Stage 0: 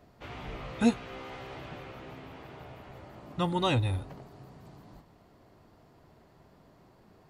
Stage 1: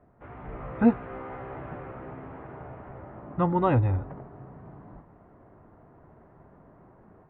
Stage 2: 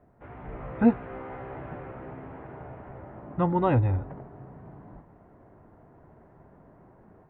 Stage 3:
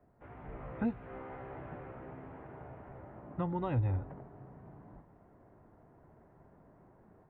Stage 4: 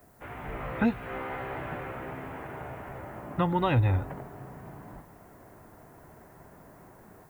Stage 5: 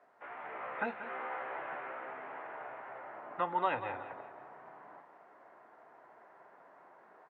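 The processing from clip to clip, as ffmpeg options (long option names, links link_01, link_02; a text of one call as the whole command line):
ffmpeg -i in.wav -af "lowpass=frequency=1700:width=0.5412,lowpass=frequency=1700:width=1.3066,dynaudnorm=framelen=380:gausssize=3:maxgain=6.5dB,volume=-1.5dB" out.wav
ffmpeg -i in.wav -af "equalizer=frequency=1200:width=5:gain=-4" out.wav
ffmpeg -i in.wav -filter_complex "[0:a]acrossover=split=150|3000[link_01][link_02][link_03];[link_02]acompressor=threshold=-27dB:ratio=4[link_04];[link_01][link_04][link_03]amix=inputs=3:normalize=0,volume=-6.5dB" out.wav
ffmpeg -i in.wav -af "crystalizer=i=9:c=0,volume=7dB" out.wav
ffmpeg -i in.wav -af "flanger=delay=7.3:depth=6.5:regen=-73:speed=0.34:shape=triangular,highpass=640,lowpass=2100,aecho=1:1:183|366|549|732:0.224|0.0806|0.029|0.0104,volume=3dB" out.wav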